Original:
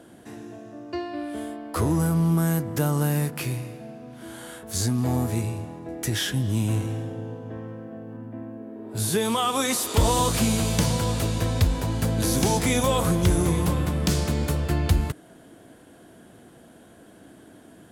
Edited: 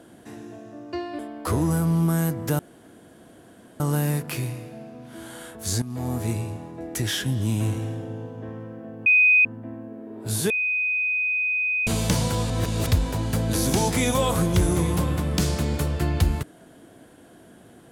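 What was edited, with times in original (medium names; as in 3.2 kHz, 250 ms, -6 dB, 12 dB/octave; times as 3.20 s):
1.19–1.48 s: delete
2.88 s: insert room tone 1.21 s
4.90–5.37 s: fade in, from -13.5 dB
8.14 s: add tone 2.5 kHz -13 dBFS 0.39 s
9.19–10.56 s: bleep 2.5 kHz -21 dBFS
11.19–11.56 s: reverse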